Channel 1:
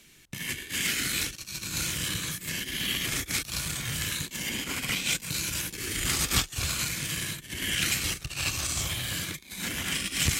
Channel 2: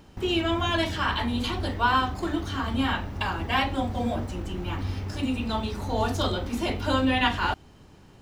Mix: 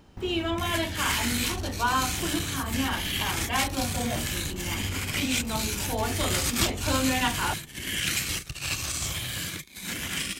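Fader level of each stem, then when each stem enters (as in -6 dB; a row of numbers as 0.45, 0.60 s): -0.5, -3.0 dB; 0.25, 0.00 s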